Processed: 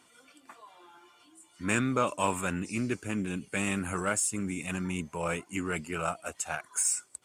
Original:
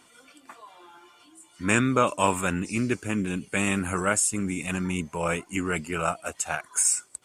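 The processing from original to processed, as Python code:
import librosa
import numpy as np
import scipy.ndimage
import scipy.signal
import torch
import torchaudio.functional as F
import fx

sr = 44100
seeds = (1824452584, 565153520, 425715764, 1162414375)

p1 = scipy.signal.sosfilt(scipy.signal.butter(2, 44.0, 'highpass', fs=sr, output='sos'), x)
p2 = np.clip(p1, -10.0 ** (-22.5 / 20.0), 10.0 ** (-22.5 / 20.0))
p3 = p1 + F.gain(torch.from_numpy(p2), -10.0).numpy()
y = F.gain(torch.from_numpy(p3), -7.0).numpy()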